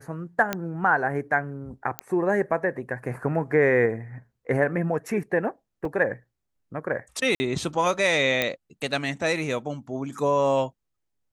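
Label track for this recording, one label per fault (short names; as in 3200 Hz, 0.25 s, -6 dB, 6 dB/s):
0.530000	0.530000	pop -10 dBFS
1.990000	1.990000	pop -11 dBFS
5.850000	5.850000	gap 2.8 ms
7.350000	7.400000	gap 50 ms
8.420000	8.420000	pop -8 dBFS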